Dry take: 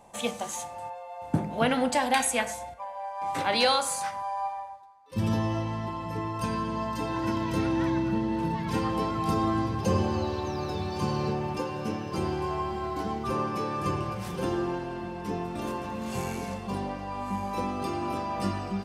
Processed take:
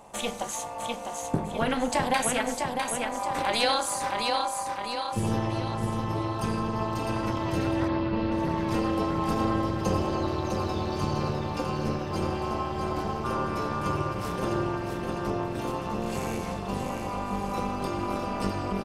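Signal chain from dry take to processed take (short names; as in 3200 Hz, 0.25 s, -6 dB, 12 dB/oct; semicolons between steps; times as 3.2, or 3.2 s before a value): on a send: feedback echo 0.654 s, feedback 47%, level -5.5 dB; on the sum: AM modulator 240 Hz, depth 65%; 7.88–8.32 Chebyshev low-pass 4700 Hz, order 4; in parallel at +2.5 dB: compressor, threshold -38 dBFS, peak gain reduction 15.5 dB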